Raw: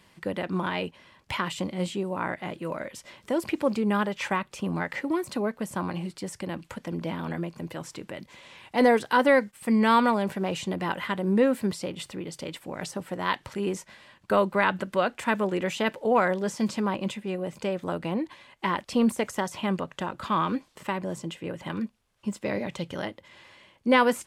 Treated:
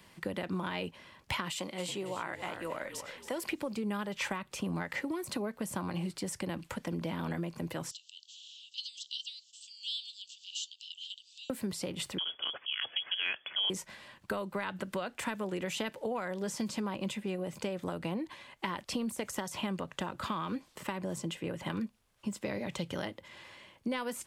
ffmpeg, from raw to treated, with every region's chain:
-filter_complex "[0:a]asettb=1/sr,asplit=3[a][b][c];[a]atrim=end=1.504[d];[b]atrim=start=1.5:end=3.5,asetpts=PTS-STARTPTS,afade=t=in:d=0.004:c=qsin,afade=t=out:st=1.996:d=0.004:c=qsin,highpass=f=640:p=1,asplit=5[e][f][g][h][i];[f]adelay=277,afreqshift=-47,volume=-11.5dB[j];[g]adelay=554,afreqshift=-94,volume=-19.2dB[k];[h]adelay=831,afreqshift=-141,volume=-27dB[l];[i]adelay=1108,afreqshift=-188,volume=-34.7dB[m];[e][j][k][l][m]amix=inputs=5:normalize=0,atrim=end_sample=88200[n];[c]atrim=start=3.496[o];[d][n]acrossfade=d=0.004:c1=hsin:c2=qsin[p];[p][o]acrossfade=d=0.004:c1=qsin:c2=hsin,asettb=1/sr,asplit=3[q][r][s];[q]atrim=end=7.914[t];[r]atrim=start=7.91:end=11.5,asetpts=PTS-STARTPTS,afade=t=in:d=0.004:c=qsin,afade=t=out:st=3.586:d=0.004:c=qsin,asuperpass=centerf=4800:order=20:qfactor=1,acompressor=mode=upward:threshold=-45dB:ratio=2.5:attack=3.2:release=140:knee=2.83:detection=peak[u];[s]atrim=start=11.496[v];[t][u]acrossfade=d=0.004:c1=hsin:c2=qsin[w];[w][v]acrossfade=d=0.004:c1=qsin:c2=hsin,asettb=1/sr,asplit=3[x][y][z];[x]atrim=end=12.184[aa];[y]atrim=start=12.18:end=13.7,asetpts=PTS-STARTPTS,afade=t=in:d=0.004:c=qsin,afade=t=out:st=1.516:d=0.004:c=qsin,lowpass=f=3k:t=q:w=0.5098,lowpass=f=3k:t=q:w=0.6013,lowpass=f=3k:t=q:w=0.9,lowpass=f=3k:t=q:w=2.563,afreqshift=-3500,highpass=120[ab];[z]atrim=start=13.696[ac];[aa][ab]acrossfade=d=0.004:c1=hsin:c2=qsin[ad];[ad][ac]acrossfade=d=0.004:c1=qsin:c2=hsin,acompressor=threshold=-29dB:ratio=3,highshelf=f=11k:g=5,acrossover=split=140|3000[ae][af][ag];[af]acompressor=threshold=-34dB:ratio=3[ah];[ae][ah][ag]amix=inputs=3:normalize=0"

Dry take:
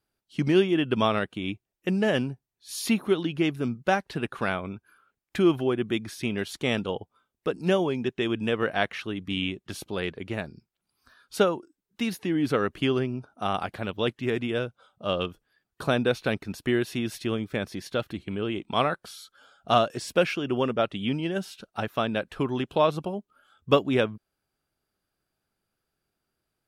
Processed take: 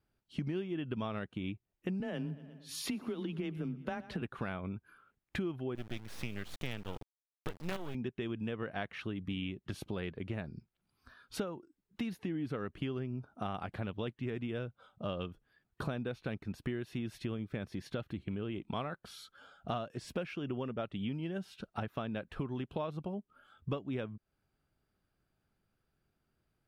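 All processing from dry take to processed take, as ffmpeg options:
-filter_complex "[0:a]asettb=1/sr,asplit=3[a][b][c];[a]atrim=end=2.004[d];[b]atrim=start=2:end=4.22,asetpts=PTS-STARTPTS,afade=t=in:d=0.004:c=qsin,afade=t=out:st=2.216:d=0.004:c=qsin,acompressor=threshold=-24dB:ratio=3:attack=3.2:release=140:knee=1:detection=peak,afreqshift=19,aecho=1:1:119|238|357|476:0.106|0.0551|0.0286|0.0149,atrim=end_sample=97902[e];[c]atrim=start=4.216[f];[d][e]acrossfade=d=0.004:c1=hsin:c2=qsin[g];[g][f]acrossfade=d=0.004:c1=qsin:c2=hsin,asettb=1/sr,asplit=3[h][i][j];[h]atrim=end=5.754[k];[i]atrim=start=5.75:end=7.95,asetpts=PTS-STARTPTS,afade=t=in:d=0.004:c=qsin,afade=t=out:st=2.196:d=0.004:c=qsin,highpass=40,tiltshelf=f=830:g=-4,acrusher=bits=4:dc=4:mix=0:aa=0.000001[l];[j]atrim=start=7.946[m];[k][l]acrossfade=d=0.004:c1=hsin:c2=qsin[n];[n][m]acrossfade=d=0.004:c1=qsin:c2=hsin,bass=f=250:g=7,treble=f=4k:g=-8,acompressor=threshold=-35dB:ratio=5,volume=-1dB"

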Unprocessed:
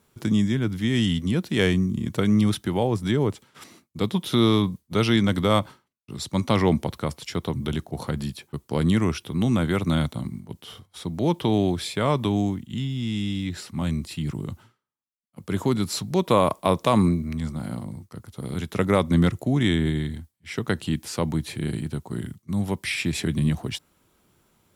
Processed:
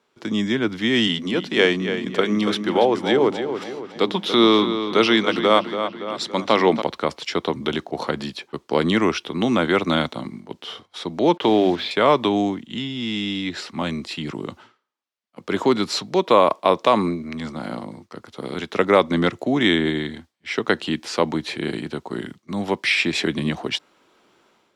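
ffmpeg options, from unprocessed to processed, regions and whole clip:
-filter_complex "[0:a]asettb=1/sr,asplit=3[a][b][c];[a]atrim=end=1.074[d];[b]atrim=start=1.07:end=6.82,asetpts=PTS-STARTPTS,afade=t=in:d=0.004:c=qsin,afade=t=out:st=5.746:d=0.004:c=qsin,highpass=130,bandreject=f=50:t=h:w=6,bandreject=f=100:t=h:w=6,bandreject=f=150:t=h:w=6,bandreject=f=200:t=h:w=6,bandreject=f=250:t=h:w=6,bandreject=f=300:t=h:w=6,asplit=2[e][f];[f]adelay=283,lowpass=f=4.6k:p=1,volume=-9dB,asplit=2[g][h];[h]adelay=283,lowpass=f=4.6k:p=1,volume=0.48,asplit=2[i][j];[j]adelay=283,lowpass=f=4.6k:p=1,volume=0.48,asplit=2[k][l];[l]adelay=283,lowpass=f=4.6k:p=1,volume=0.48,asplit=2[m][n];[n]adelay=283,lowpass=f=4.6k:p=1,volume=0.48[o];[e][g][i][k][m][o]amix=inputs=6:normalize=0,atrim=end_sample=253575[p];[c]atrim=start=6.816[q];[d][p]acrossfade=d=0.004:c1=hsin:c2=qsin[r];[r][q]acrossfade=d=0.004:c1=qsin:c2=hsin,asettb=1/sr,asplit=3[s][t][u];[s]atrim=end=11.374[v];[t]atrim=start=11.37:end=11.91,asetpts=PTS-STARTPTS,afade=t=in:d=0.004:c=qsin,afade=t=out:st=0.536:d=0.004:c=qsin,lowpass=f=3.9k:w=0.5412,lowpass=f=3.9k:w=1.3066,bandreject=f=50:t=h:w=6,bandreject=f=100:t=h:w=6,bandreject=f=150:t=h:w=6,bandreject=f=200:t=h:w=6,bandreject=f=250:t=h:w=6,acrusher=bits=6:mix=0:aa=0.5[w];[u]atrim=start=11.906[x];[v][w]acrossfade=d=0.004:c1=hsin:c2=qsin[y];[y][x]acrossfade=d=0.004:c1=qsin:c2=hsin,acrossover=split=260 5900:gain=0.0794 1 0.0794[z][aa][ab];[z][aa][ab]amix=inputs=3:normalize=0,dynaudnorm=f=130:g=5:m=9dB"

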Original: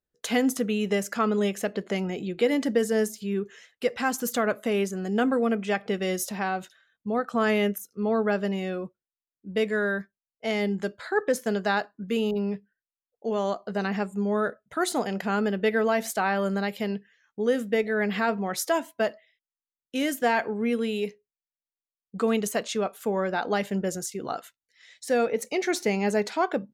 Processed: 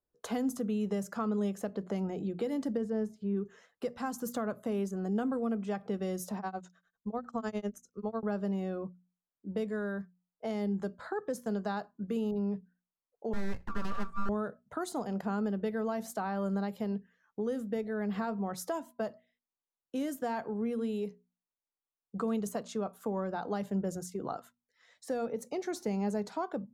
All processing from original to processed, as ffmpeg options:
-filter_complex "[0:a]asettb=1/sr,asplit=3[a][b][c];[a]atrim=end=2.774[d];[b]atrim=start=2.77:end=3.37,asetpts=PTS-STARTPTS,afade=t=in:d=0.004:c=qsin,afade=t=out:st=0.596:d=0.004:c=qsin,lowpass=f=2.5k:p=1,aemphasis=mode=reproduction:type=cd[e];[c]atrim=start=3.366[f];[d][e]acrossfade=d=0.004:c1=hsin:c2=qsin[g];[g][f]acrossfade=d=0.004:c1=qsin:c2=hsin,asettb=1/sr,asplit=3[h][i][j];[h]atrim=end=6.374[k];[i]atrim=start=6.37:end=8.23,asetpts=PTS-STARTPTS,afade=t=in:d=0.004:c=qsin,afade=t=out:st=1.856:d=0.004:c=qsin,tremolo=f=10:d=0.99,lowpass=f=6.7k:t=q:w=3.3,asubboost=boost=7.5:cutoff=78[l];[j]atrim=start=8.226[m];[k][l]acrossfade=d=0.004:c1=hsin:c2=qsin[n];[n][m]acrossfade=d=0.004:c1=qsin:c2=hsin,asettb=1/sr,asplit=3[o][p][q];[o]atrim=end=13.334[r];[p]atrim=start=13.33:end=14.29,asetpts=PTS-STARTPTS,afade=t=in:d=0.004:c=qsin,afade=t=out:st=0.956:d=0.004:c=qsin,lowpass=4.1k,afreqshift=390,aeval=exprs='abs(val(0))':c=same[s];[q]atrim=start=14.286[t];[r][s]acrossfade=d=0.004:c1=hsin:c2=qsin[u];[u][t]acrossfade=d=0.004:c1=qsin:c2=hsin,bandreject=f=60:t=h:w=6,bandreject=f=120:t=h:w=6,bandreject=f=180:t=h:w=6,bandreject=f=240:t=h:w=6,acrossover=split=190|3000[v][w][x];[w]acompressor=threshold=-38dB:ratio=3[y];[v][y][x]amix=inputs=3:normalize=0,highshelf=f=1.6k:t=q:w=1.5:g=-11.5"

